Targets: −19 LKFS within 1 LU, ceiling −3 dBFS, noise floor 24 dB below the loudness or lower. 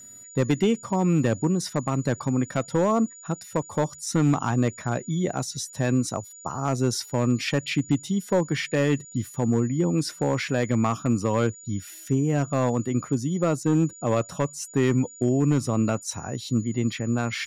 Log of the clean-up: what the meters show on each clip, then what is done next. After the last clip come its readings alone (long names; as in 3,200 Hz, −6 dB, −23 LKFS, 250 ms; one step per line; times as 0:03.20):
share of clipped samples 1.0%; peaks flattened at −14.0 dBFS; interfering tone 6,900 Hz; level of the tone −43 dBFS; integrated loudness −25.5 LKFS; sample peak −14.0 dBFS; target loudness −19.0 LKFS
→ clipped peaks rebuilt −14 dBFS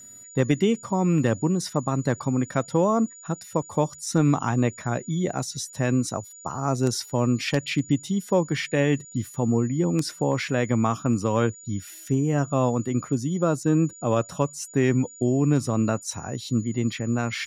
share of clipped samples 0.0%; interfering tone 6,900 Hz; level of the tone −43 dBFS
→ notch filter 6,900 Hz, Q 30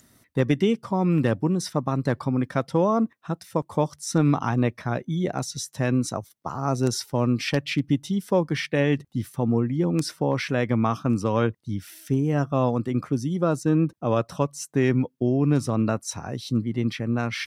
interfering tone none found; integrated loudness −25.0 LKFS; sample peak −7.0 dBFS; target loudness −19.0 LKFS
→ level +6 dB
brickwall limiter −3 dBFS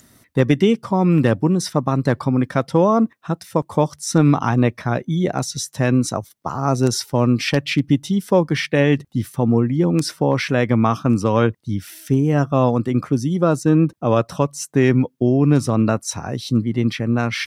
integrated loudness −19.0 LKFS; sample peak −3.0 dBFS; background noise floor −56 dBFS